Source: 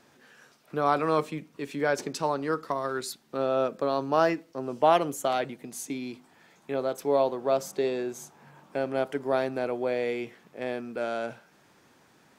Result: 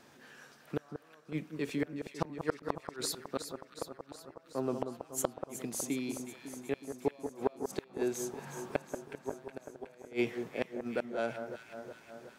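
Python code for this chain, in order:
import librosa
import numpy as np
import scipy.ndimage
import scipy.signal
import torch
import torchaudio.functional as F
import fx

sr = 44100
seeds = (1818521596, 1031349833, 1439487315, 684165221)

y = fx.gate_flip(x, sr, shuts_db=-20.0, range_db=-38)
y = fx.rider(y, sr, range_db=4, speed_s=0.5)
y = fx.echo_alternate(y, sr, ms=184, hz=1500.0, feedback_pct=78, wet_db=-7.5)
y = y * librosa.db_to_amplitude(2.5)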